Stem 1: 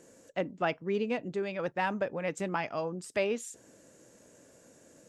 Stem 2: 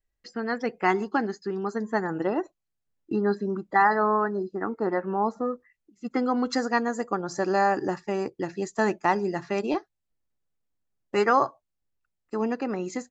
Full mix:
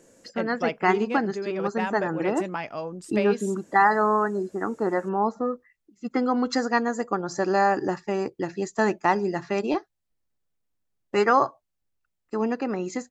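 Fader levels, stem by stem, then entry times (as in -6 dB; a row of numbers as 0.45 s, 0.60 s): +1.0 dB, +1.5 dB; 0.00 s, 0.00 s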